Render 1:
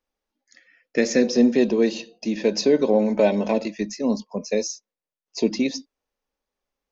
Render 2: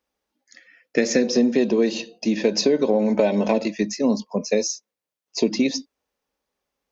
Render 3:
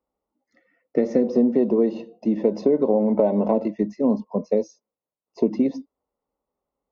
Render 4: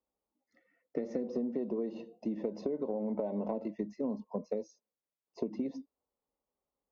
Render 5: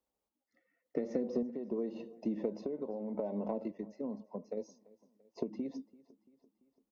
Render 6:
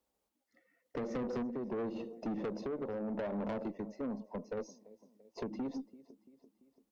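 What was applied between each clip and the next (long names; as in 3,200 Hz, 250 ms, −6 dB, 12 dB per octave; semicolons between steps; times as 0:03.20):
high-pass filter 56 Hz; downward compressor, threshold −19 dBFS, peak gain reduction 7 dB; level +4.5 dB
Savitzky-Golay smoothing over 65 samples
downward compressor 4 to 1, threshold −24 dBFS, peak gain reduction 9 dB; level −8 dB
sample-and-hold tremolo 3.5 Hz; repeating echo 339 ms, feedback 53%, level −23 dB; level +1 dB
tube saturation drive 38 dB, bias 0.2; level +5 dB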